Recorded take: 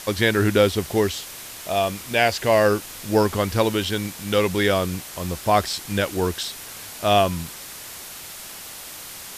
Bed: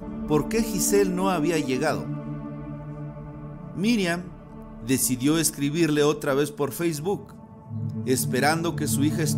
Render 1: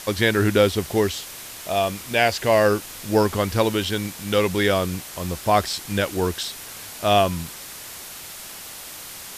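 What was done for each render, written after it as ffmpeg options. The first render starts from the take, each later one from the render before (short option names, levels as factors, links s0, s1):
-af anull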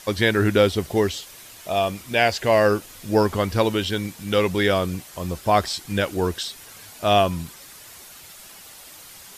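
-af "afftdn=nr=8:nf=-38"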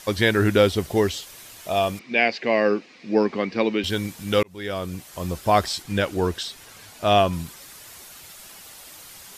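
-filter_complex "[0:a]asettb=1/sr,asplit=3[s0][s1][s2];[s0]atrim=end=1.994[s3];[s1]atrim=start=1.99:end=3.84,asetpts=PTS-STARTPTS,afade=t=in:d=0.004:c=qsin,afade=t=out:st=1.846:d=0.004:c=qsin,highpass=f=190:w=0.5412,highpass=f=190:w=1.3066,equalizer=f=230:t=q:w=4:g=3,equalizer=f=620:t=q:w=4:g=-5,equalizer=f=940:t=q:w=4:g=-6,equalizer=f=1400:t=q:w=4:g=-8,equalizer=f=2300:t=q:w=4:g=6,equalizer=f=3300:t=q:w=4:g=-8,lowpass=f=4400:w=0.5412,lowpass=f=4400:w=1.3066[s4];[s2]atrim=start=3.836[s5];[s3][s4]acrossfade=d=0.004:c1=hsin:c2=qsin[s6];[s6][s5]acrossfade=d=0.004:c1=qsin:c2=hsin,asettb=1/sr,asplit=3[s7][s8][s9];[s7]atrim=end=5.824[s10];[s8]atrim=start=5.82:end=7.33,asetpts=PTS-STARTPTS,afade=t=in:d=0.004:c=qsin,afade=t=out:st=1.506:d=0.004:c=qsin,highshelf=f=8200:g=-7[s11];[s9]atrim=start=7.326[s12];[s10][s11]acrossfade=d=0.004:c1=hsin:c2=qsin[s13];[s13][s12]acrossfade=d=0.004:c1=qsin:c2=hsin,asplit=2[s14][s15];[s14]atrim=end=4.43,asetpts=PTS-STARTPTS,afade=t=out:st=4.426:d=0.004:c=hsin[s16];[s15]atrim=start=4.43,asetpts=PTS-STARTPTS,afade=t=in:d=0.8[s17];[s16][s17]concat=n=2:v=0:a=1"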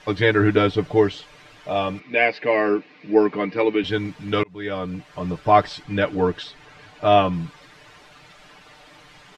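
-af "lowpass=2700,aecho=1:1:6.7:0.87"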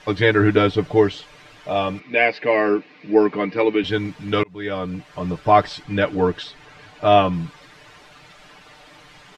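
-af "volume=1.19,alimiter=limit=0.708:level=0:latency=1"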